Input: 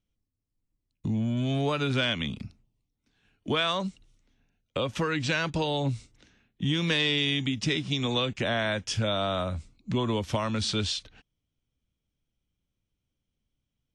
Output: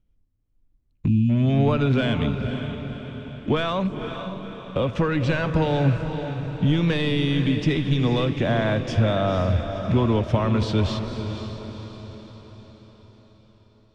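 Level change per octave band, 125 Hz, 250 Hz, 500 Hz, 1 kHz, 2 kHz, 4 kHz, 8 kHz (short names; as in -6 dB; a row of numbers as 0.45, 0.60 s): +10.0 dB, +8.0 dB, +6.5 dB, +4.5 dB, +0.5 dB, -3.5 dB, n/a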